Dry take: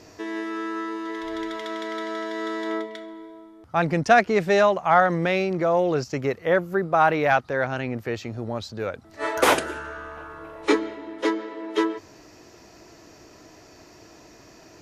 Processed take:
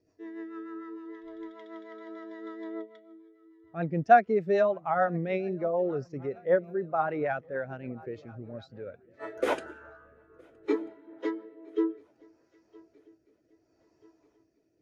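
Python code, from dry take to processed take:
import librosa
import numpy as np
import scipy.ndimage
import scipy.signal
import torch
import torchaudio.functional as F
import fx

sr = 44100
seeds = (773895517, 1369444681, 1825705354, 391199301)

y = fx.echo_swing(x, sr, ms=1288, ratio=3, feedback_pct=51, wet_db=-18.5)
y = fx.rotary_switch(y, sr, hz=6.7, then_hz=0.7, switch_at_s=8.66)
y = fx.spectral_expand(y, sr, expansion=1.5)
y = y * librosa.db_to_amplitude(-2.0)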